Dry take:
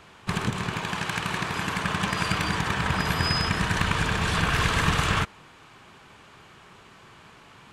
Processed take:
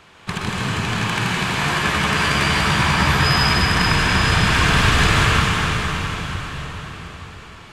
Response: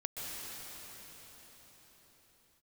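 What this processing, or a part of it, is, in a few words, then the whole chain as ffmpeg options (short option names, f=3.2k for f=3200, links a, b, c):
cathedral: -filter_complex "[0:a]equalizer=f=3.3k:w=0.42:g=3[a];[1:a]atrim=start_sample=2205[b];[a][b]afir=irnorm=-1:irlink=0,asettb=1/sr,asplit=3[c][d][e];[c]atrim=end=1.604[f];[d]atrim=start=1.6:end=3.59,asetpts=PTS-STARTPTS,afade=t=in:d=0.004:c=qsin,afade=t=out:st=1.986:d=0.004:c=qsin,asplit=2[g][h];[h]adelay=14,volume=-5.5dB[i];[g][i]amix=inputs=2:normalize=0,atrim=end_sample=87759[j];[e]atrim=start=3.586[k];[f][j]acrossfade=d=0.004:c1=hsin:c2=qsin[l];[l][k]acrossfade=d=0.004:c1=qsin:c2=hsin,volume=4dB"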